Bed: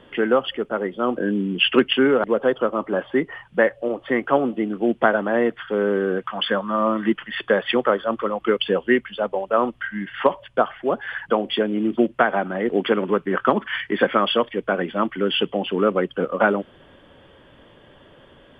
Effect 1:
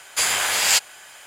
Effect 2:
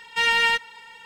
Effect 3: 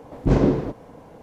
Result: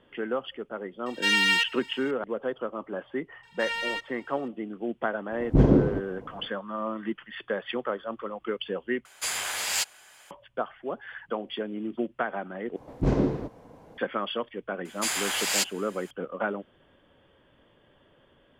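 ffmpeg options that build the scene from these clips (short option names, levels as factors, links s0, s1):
-filter_complex "[2:a]asplit=2[s0][s1];[3:a]asplit=2[s2][s3];[1:a]asplit=2[s4][s5];[0:a]volume=0.266[s6];[s0]tiltshelf=f=1100:g=-8.5[s7];[s2]tiltshelf=f=970:g=5.5[s8];[s4]aeval=exprs='0.376*(abs(mod(val(0)/0.376+3,4)-2)-1)':c=same[s9];[s6]asplit=3[s10][s11][s12];[s10]atrim=end=9.054[s13];[s9]atrim=end=1.26,asetpts=PTS-STARTPTS,volume=0.335[s14];[s11]atrim=start=10.306:end=12.764[s15];[s3]atrim=end=1.22,asetpts=PTS-STARTPTS,volume=0.501[s16];[s12]atrim=start=13.976[s17];[s7]atrim=end=1.05,asetpts=PTS-STARTPTS,volume=0.447,afade=t=in:d=0.004:c=hsin,afade=t=out:st=1.046:d=0.004:c=hsin,adelay=1060[s18];[s1]atrim=end=1.05,asetpts=PTS-STARTPTS,volume=0.266,afade=t=in:d=0.004:c=hsin,afade=t=out:st=1.046:d=0.004:c=hsin,adelay=3430[s19];[s8]atrim=end=1.22,asetpts=PTS-STARTPTS,volume=0.531,afade=t=in:d=0.05,afade=t=out:st=1.17:d=0.05,adelay=5280[s20];[s5]atrim=end=1.26,asetpts=PTS-STARTPTS,volume=0.398,afade=t=in:d=0.004:c=hsin,afade=t=out:st=1.256:d=0.004:c=hsin,adelay=14850[s21];[s13][s14]acrossfade=d=0.004:c1=hsin:c2=hsin[s22];[s22][s15]acrossfade=d=0.004:c1=hsin:c2=hsin[s23];[s23][s16]acrossfade=d=0.004:c1=hsin:c2=hsin[s24];[s24][s17]acrossfade=d=0.004:c1=hsin:c2=hsin[s25];[s25][s18][s19][s20][s21]amix=inputs=5:normalize=0"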